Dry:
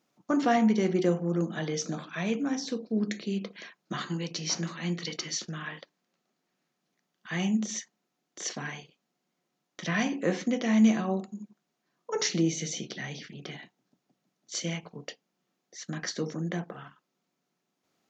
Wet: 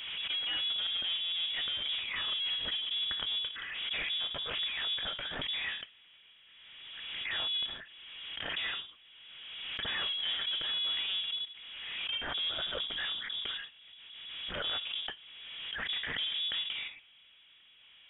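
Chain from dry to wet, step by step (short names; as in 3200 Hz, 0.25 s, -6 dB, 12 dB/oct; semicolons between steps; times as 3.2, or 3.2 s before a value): Wiener smoothing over 15 samples; low shelf 460 Hz -4.5 dB; reverse; compressor 6:1, threshold -35 dBFS, peak gain reduction 14 dB; reverse; power-law curve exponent 0.5; in parallel at -8 dB: bit-crush 6-bit; on the sum: inverted band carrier 3600 Hz; backwards sustainer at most 29 dB/s; gain -6 dB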